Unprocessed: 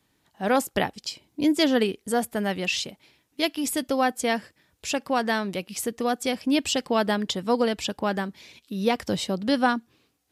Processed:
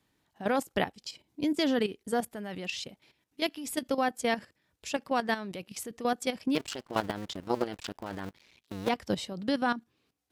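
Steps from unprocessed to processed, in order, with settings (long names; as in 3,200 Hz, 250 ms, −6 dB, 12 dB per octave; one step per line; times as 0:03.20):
0:06.55–0:08.89: sub-harmonics by changed cycles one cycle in 2, muted
high-shelf EQ 5,600 Hz −3.5 dB
output level in coarse steps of 12 dB
level −2 dB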